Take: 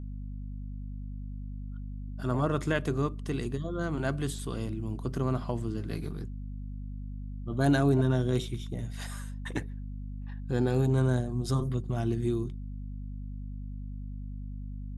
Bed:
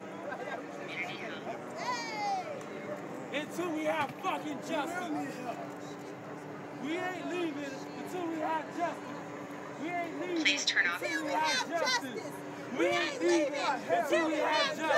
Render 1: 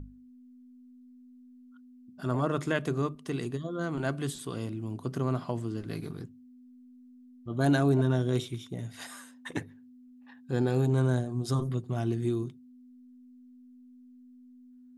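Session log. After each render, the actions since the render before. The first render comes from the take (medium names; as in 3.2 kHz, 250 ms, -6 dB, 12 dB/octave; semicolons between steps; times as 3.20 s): hum notches 50/100/150/200 Hz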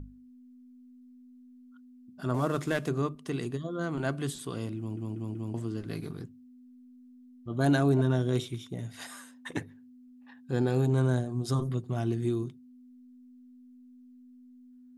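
2.34–2.89 s: CVSD coder 64 kbps; 4.78 s: stutter in place 0.19 s, 4 plays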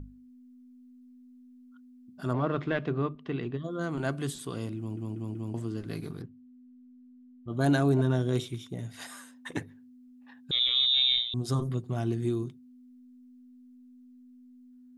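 2.33–3.64 s: low-pass 3.5 kHz 24 dB/octave; 6.22–7.48 s: distance through air 290 m; 10.51–11.34 s: frequency inversion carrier 3.8 kHz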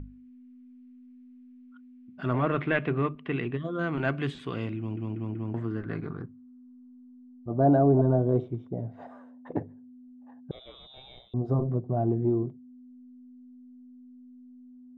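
in parallel at -10 dB: hard clipper -25 dBFS, distortion -10 dB; on the sum: low-pass sweep 2.4 kHz -> 670 Hz, 5.02–7.69 s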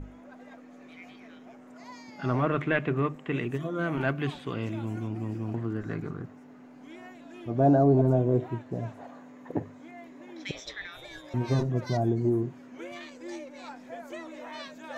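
add bed -12.5 dB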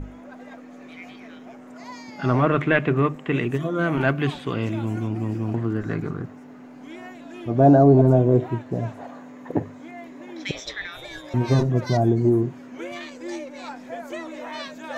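trim +7 dB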